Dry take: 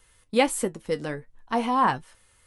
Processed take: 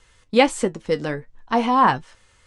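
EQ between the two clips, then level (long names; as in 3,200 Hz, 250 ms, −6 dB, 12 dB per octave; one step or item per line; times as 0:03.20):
low-pass filter 7,500 Hz 24 dB per octave
+5.5 dB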